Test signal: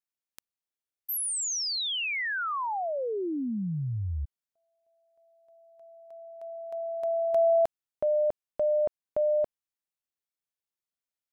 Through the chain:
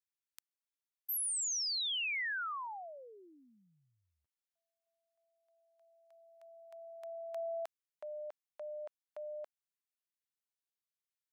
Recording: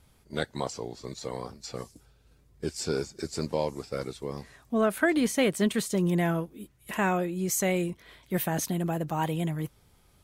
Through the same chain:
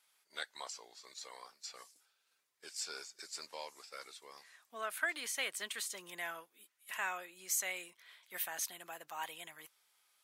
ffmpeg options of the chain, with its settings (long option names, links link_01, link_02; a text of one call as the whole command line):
ffmpeg -i in.wav -af "highpass=1300,volume=-5dB" out.wav